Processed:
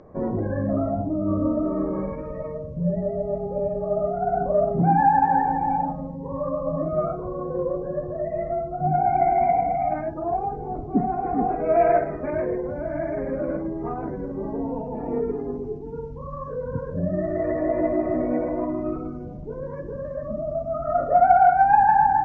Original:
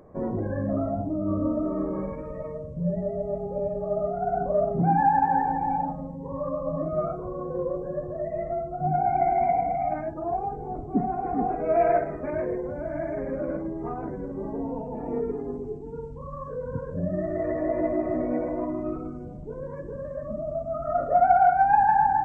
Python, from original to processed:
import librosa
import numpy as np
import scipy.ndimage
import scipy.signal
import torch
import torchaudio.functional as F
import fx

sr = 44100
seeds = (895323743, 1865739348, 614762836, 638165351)

y = scipy.signal.sosfilt(scipy.signal.butter(6, 6300.0, 'lowpass', fs=sr, output='sos'), x)
y = F.gain(torch.from_numpy(y), 3.0).numpy()